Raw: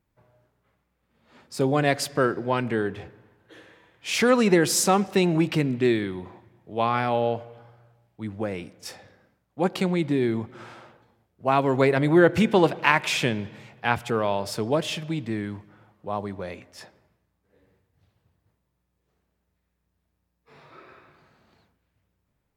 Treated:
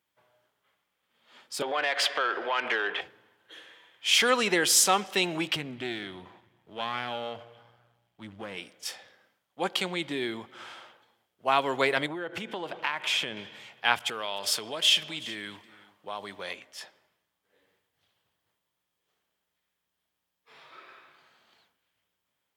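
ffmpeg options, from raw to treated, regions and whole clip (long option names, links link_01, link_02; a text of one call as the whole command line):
ffmpeg -i in.wav -filter_complex "[0:a]asettb=1/sr,asplit=3[link_01][link_02][link_03];[link_01]atrim=end=1.624[link_04];[link_02]atrim=start=1.62:end=3.01,asetpts=PTS-STARTPTS,afade=type=in:duration=0.004:curve=qsin,afade=type=out:start_time=1.386:duration=0.004:curve=qsin,acrossover=split=330 3600:gain=0.2 1 0.224[link_05][link_06][link_07];[link_05][link_06][link_07]amix=inputs=3:normalize=0,acompressor=threshold=-30dB:ratio=12:attack=3.2:release=140:knee=1:detection=peak,asplit=2[link_08][link_09];[link_09]highpass=frequency=720:poles=1,volume=21dB,asoftclip=type=tanh:threshold=-12.5dB[link_10];[link_08][link_10]amix=inputs=2:normalize=0,lowpass=frequency=3100:poles=1,volume=-6dB[link_11];[link_03]atrim=start=3.006[link_12];[link_04][link_11]acrossfade=duration=0.004:curve1=hsin:curve2=qsin[link_13];[link_13][link_12]acrossfade=duration=0.004:curve1=qsin:curve2=hsin,asettb=1/sr,asplit=3[link_14][link_15][link_16];[link_14]atrim=end=5.564[link_17];[link_15]atrim=start=5.56:end=8.57,asetpts=PTS-STARTPTS,afade=type=in:duration=0.004:curve=qsin,afade=type=out:start_time=3.006:duration=0.004:curve=qsin,aeval=exprs='if(lt(val(0),0),0.447*val(0),val(0))':channel_layout=same,acompressor=threshold=-33dB:ratio=1.5:attack=3.2:release=140:knee=1:detection=peak,bass=frequency=250:gain=10,treble=frequency=4000:gain=-3[link_18];[link_16]atrim=start=8.566[link_19];[link_17][link_18]acrossfade=duration=0.004:curve1=hsin:curve2=qsin[link_20];[link_20][link_19]acrossfade=duration=0.004:curve1=qsin:curve2=hsin,asettb=1/sr,asplit=3[link_21][link_22][link_23];[link_21]atrim=end=12.064[link_24];[link_22]atrim=start=12.06:end=13.37,asetpts=PTS-STARTPTS,afade=type=in:duration=0.004:curve=qsin,afade=type=out:start_time=1.306:duration=0.004:curve=qsin,highshelf=frequency=2200:gain=-9.5,acompressor=threshold=-23dB:ratio=16:attack=3.2:release=140:knee=1:detection=peak[link_25];[link_23]atrim=start=13.366[link_26];[link_24][link_25]acrossfade=duration=0.004:curve1=hsin:curve2=qsin[link_27];[link_27][link_26]acrossfade=duration=0.004:curve1=qsin:curve2=hsin,asettb=1/sr,asplit=3[link_28][link_29][link_30];[link_28]atrim=end=13.994[link_31];[link_29]atrim=start=13.99:end=16.53,asetpts=PTS-STARTPTS,afade=type=in:duration=0.004:curve=qsin,afade=type=out:start_time=2.536:duration=0.004:curve=qsin,acompressor=threshold=-27dB:ratio=4:attack=3.2:release=140:knee=1:detection=peak,aecho=1:1:374:0.119,atrim=end_sample=112014,adynamicequalizer=threshold=0.00447:dfrequency=1600:dqfactor=0.7:tfrequency=1600:tqfactor=0.7:attack=5:release=100:ratio=0.375:range=2.5:mode=boostabove:tftype=highshelf[link_32];[link_30]atrim=start=16.526[link_33];[link_31][link_32]acrossfade=duration=0.004:curve1=hsin:curve2=qsin[link_34];[link_34][link_33]acrossfade=duration=0.004:curve1=qsin:curve2=hsin,highpass=frequency=1300:poles=1,equalizer=frequency=3200:width_type=o:width=0.23:gain=9,volume=2.5dB" out.wav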